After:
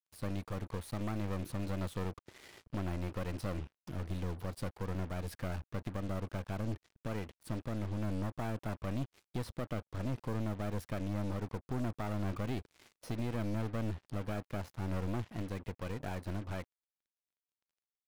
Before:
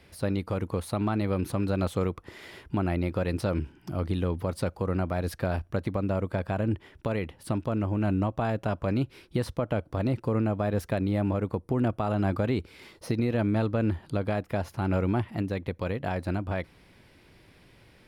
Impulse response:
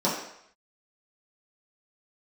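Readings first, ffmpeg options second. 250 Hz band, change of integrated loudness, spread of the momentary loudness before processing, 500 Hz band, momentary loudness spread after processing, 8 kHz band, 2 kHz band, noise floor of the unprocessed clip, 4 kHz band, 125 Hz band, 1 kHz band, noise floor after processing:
-10.5 dB, -10.0 dB, 6 LU, -12.5 dB, 5 LU, -5.5 dB, -9.5 dB, -57 dBFS, -7.0 dB, -9.0 dB, -10.5 dB, under -85 dBFS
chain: -af "acrusher=bits=6:mix=0:aa=0.5,aeval=exprs='(tanh(22.4*val(0)+0.75)-tanh(0.75))/22.4':c=same,volume=0.596"

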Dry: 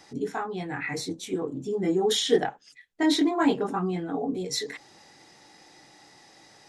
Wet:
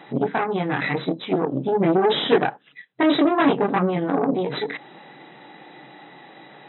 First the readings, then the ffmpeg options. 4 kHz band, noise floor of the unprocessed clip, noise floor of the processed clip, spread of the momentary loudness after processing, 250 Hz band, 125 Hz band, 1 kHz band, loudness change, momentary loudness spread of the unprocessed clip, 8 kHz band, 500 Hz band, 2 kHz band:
+1.5 dB, -55 dBFS, -51 dBFS, 8 LU, +5.5 dB, +8.0 dB, +8.5 dB, +5.5 dB, 10 LU, under -40 dB, +6.0 dB, +7.5 dB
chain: -filter_complex "[0:a]asplit=2[s0][s1];[s1]acompressor=threshold=0.0158:ratio=8,volume=1.33[s2];[s0][s2]amix=inputs=2:normalize=0,aeval=exprs='0.422*(cos(1*acos(clip(val(0)/0.422,-1,1)))-cos(1*PI/2))+0.0119*(cos(3*acos(clip(val(0)/0.422,-1,1)))-cos(3*PI/2))+0.0188*(cos(4*acos(clip(val(0)/0.422,-1,1)))-cos(4*PI/2))+0.106*(cos(6*acos(clip(val(0)/0.422,-1,1)))-cos(6*PI/2))+0.00473*(cos(7*acos(clip(val(0)/0.422,-1,1)))-cos(7*PI/2))':c=same,asoftclip=type=tanh:threshold=0.251,highshelf=f=2800:g=-6.5,afftfilt=real='re*between(b*sr/4096,120,4000)':imag='im*between(b*sr/4096,120,4000)':win_size=4096:overlap=0.75,volume=2"

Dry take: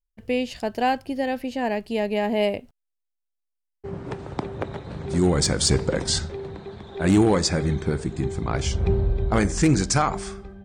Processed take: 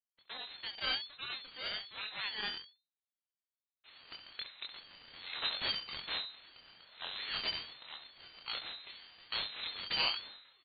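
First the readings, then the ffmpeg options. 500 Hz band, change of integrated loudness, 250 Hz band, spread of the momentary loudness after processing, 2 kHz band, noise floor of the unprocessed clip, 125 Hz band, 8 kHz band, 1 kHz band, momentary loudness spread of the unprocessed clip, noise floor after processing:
-29.5 dB, -14.5 dB, -36.5 dB, 17 LU, -9.0 dB, -80 dBFS, -38.0 dB, under -40 dB, -19.5 dB, 14 LU, under -85 dBFS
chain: -af "highpass=f=730:w=0.5412,highpass=f=730:w=1.3066,aeval=exprs='abs(val(0))':c=same,lowpass=f=3300:t=q:w=0.5098,lowpass=f=3300:t=q:w=0.6013,lowpass=f=3300:t=q:w=0.9,lowpass=f=3300:t=q:w=2.563,afreqshift=-3900,aecho=1:1:24|68:0.631|0.299,aeval=exprs='val(0)*sin(2*PI*480*n/s+480*0.75/1.2*sin(2*PI*1.2*n/s))':c=same,volume=0.531"

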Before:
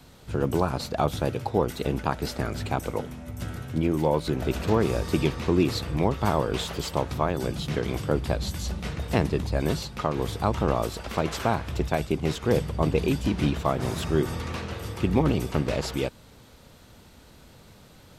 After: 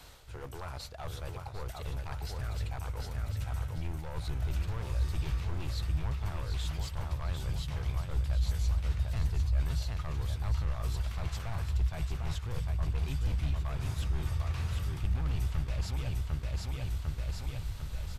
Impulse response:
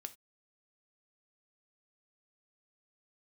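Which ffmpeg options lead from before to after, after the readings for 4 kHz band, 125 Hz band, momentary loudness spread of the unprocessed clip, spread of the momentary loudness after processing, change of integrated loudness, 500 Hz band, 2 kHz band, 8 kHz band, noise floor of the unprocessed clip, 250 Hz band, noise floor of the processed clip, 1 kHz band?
-9.5 dB, -3.5 dB, 7 LU, 8 LU, -8.0 dB, -21.0 dB, -11.0 dB, -9.0 dB, -52 dBFS, -19.0 dB, -43 dBFS, -16.0 dB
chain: -filter_complex "[0:a]asplit=2[s0][s1];[s1]acrusher=bits=3:mode=log:mix=0:aa=0.000001,volume=0.282[s2];[s0][s2]amix=inputs=2:normalize=0,aecho=1:1:750|1500|2250|3000|3750:0.422|0.173|0.0709|0.0291|0.0119,asoftclip=type=hard:threshold=0.133,equalizer=f=210:t=o:w=1.7:g=-15,aresample=32000,aresample=44100,areverse,acompressor=threshold=0.00794:ratio=5,areverse,asubboost=boost=9:cutoff=130"

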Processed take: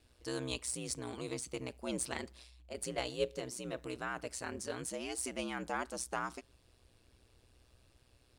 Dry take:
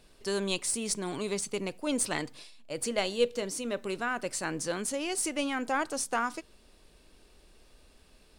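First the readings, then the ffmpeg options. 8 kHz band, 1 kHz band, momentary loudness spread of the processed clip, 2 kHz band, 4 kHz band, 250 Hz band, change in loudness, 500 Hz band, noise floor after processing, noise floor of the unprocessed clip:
-8.0 dB, -8.0 dB, 5 LU, -8.0 dB, -8.0 dB, -8.5 dB, -8.0 dB, -8.0 dB, -69 dBFS, -61 dBFS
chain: -af "aeval=exprs='val(0)*sin(2*PI*62*n/s)':c=same,volume=0.562"

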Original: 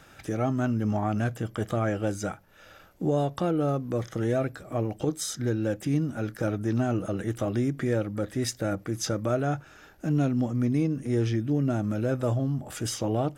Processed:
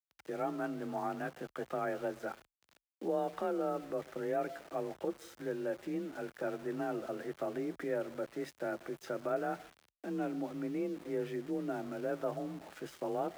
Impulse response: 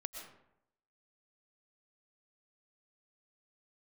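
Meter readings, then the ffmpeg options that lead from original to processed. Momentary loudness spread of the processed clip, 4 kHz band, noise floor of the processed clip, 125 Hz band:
7 LU, -15.0 dB, under -85 dBFS, -23.0 dB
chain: -filter_complex "[0:a]acrossover=split=260 2700:gain=0.126 1 0.1[s0][s1][s2];[s0][s1][s2]amix=inputs=3:normalize=0,asplit=2[s3][s4];[1:a]atrim=start_sample=2205[s5];[s4][s5]afir=irnorm=-1:irlink=0,volume=0.335[s6];[s3][s6]amix=inputs=2:normalize=0,aeval=exprs='val(0)*gte(abs(val(0)),0.00794)':c=same,afreqshift=31,volume=0.398"

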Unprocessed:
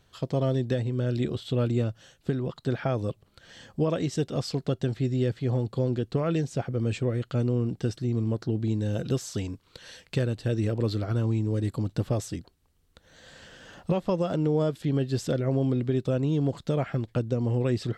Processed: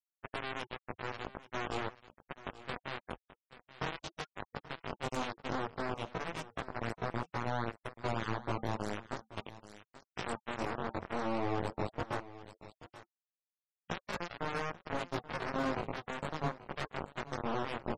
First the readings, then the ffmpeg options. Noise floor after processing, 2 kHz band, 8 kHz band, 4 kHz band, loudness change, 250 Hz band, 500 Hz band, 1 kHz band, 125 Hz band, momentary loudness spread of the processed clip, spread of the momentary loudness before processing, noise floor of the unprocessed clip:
under -85 dBFS, +2.5 dB, -10.5 dB, -4.5 dB, -11.0 dB, -14.0 dB, -11.5 dB, +2.5 dB, -18.5 dB, 11 LU, 7 LU, -65 dBFS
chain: -filter_complex "[0:a]asubboost=boost=5.5:cutoff=79,bandreject=f=50:t=h:w=6,bandreject=f=100:t=h:w=6,bandreject=f=150:t=h:w=6,bandreject=f=200:t=h:w=6,bandreject=f=250:t=h:w=6,bandreject=f=300:t=h:w=6,bandreject=f=350:t=h:w=6,bandreject=f=400:t=h:w=6,alimiter=limit=0.0794:level=0:latency=1:release=88,acrusher=bits=3:mix=0:aa=0.000001,flanger=delay=17.5:depth=4.2:speed=0.14,agate=range=0.02:threshold=0.00891:ratio=16:detection=peak,aeval=exprs='0.15*sin(PI/2*2.24*val(0)/0.15)':c=same,areverse,acompressor=mode=upward:threshold=0.02:ratio=2.5,areverse,flanger=delay=7.3:depth=8.7:regen=-66:speed=0.41:shape=sinusoidal,afftfilt=real='re*gte(hypot(re,im),0.0126)':imag='im*gte(hypot(re,im),0.0126)':win_size=1024:overlap=0.75,asplit=2[s0][s1];[s1]aecho=0:1:832:0.15[s2];[s0][s2]amix=inputs=2:normalize=0,adynamicequalizer=threshold=0.00355:dfrequency=2100:dqfactor=0.7:tfrequency=2100:tqfactor=0.7:attack=5:release=100:ratio=0.375:range=4:mode=cutabove:tftype=highshelf,volume=0.708"

